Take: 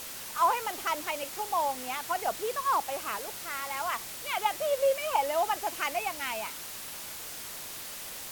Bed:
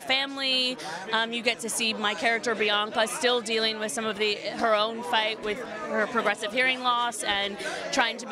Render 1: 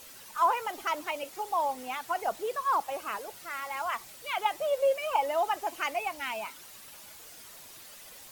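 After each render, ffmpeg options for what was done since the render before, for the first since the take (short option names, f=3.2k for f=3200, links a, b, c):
-af "afftdn=nr=10:nf=-41"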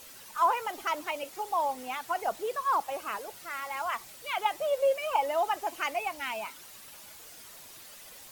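-af anull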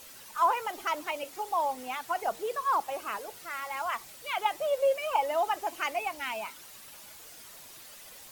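-af "bandreject=f=92.82:t=h:w=4,bandreject=f=185.64:t=h:w=4,bandreject=f=278.46:t=h:w=4,bandreject=f=371.28:t=h:w=4,bandreject=f=464.1:t=h:w=4"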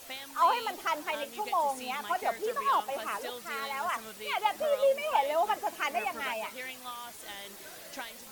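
-filter_complex "[1:a]volume=-17.5dB[a];[0:a][a]amix=inputs=2:normalize=0"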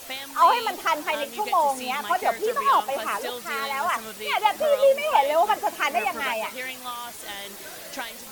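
-af "volume=7.5dB"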